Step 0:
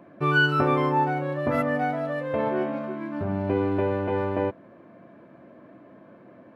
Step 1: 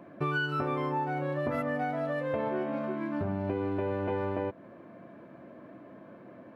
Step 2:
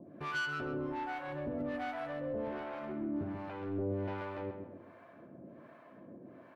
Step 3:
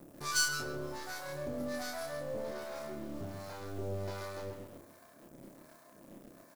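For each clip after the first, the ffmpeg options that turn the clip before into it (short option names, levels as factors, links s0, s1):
-af "acompressor=threshold=0.0398:ratio=6"
-filter_complex "[0:a]asoftclip=type=tanh:threshold=0.0316,acrossover=split=620[s0][s1];[s0]aeval=exprs='val(0)*(1-1/2+1/2*cos(2*PI*1.3*n/s))':c=same[s2];[s1]aeval=exprs='val(0)*(1-1/2-1/2*cos(2*PI*1.3*n/s))':c=same[s3];[s2][s3]amix=inputs=2:normalize=0,asplit=2[s4][s5];[s5]adelay=133,lowpass=f=2200:p=1,volume=0.473,asplit=2[s6][s7];[s7]adelay=133,lowpass=f=2200:p=1,volume=0.46,asplit=2[s8][s9];[s9]adelay=133,lowpass=f=2200:p=1,volume=0.46,asplit=2[s10][s11];[s11]adelay=133,lowpass=f=2200:p=1,volume=0.46,asplit=2[s12][s13];[s13]adelay=133,lowpass=f=2200:p=1,volume=0.46[s14];[s4][s6][s8][s10][s12][s14]amix=inputs=6:normalize=0"
-filter_complex "[0:a]aexciter=amount=16:drive=7:freq=4500,asplit=2[s0][s1];[s1]acrusher=bits=5:dc=4:mix=0:aa=0.000001,volume=0.668[s2];[s0][s2]amix=inputs=2:normalize=0,asplit=2[s3][s4];[s4]adelay=29,volume=0.668[s5];[s3][s5]amix=inputs=2:normalize=0,volume=0.531"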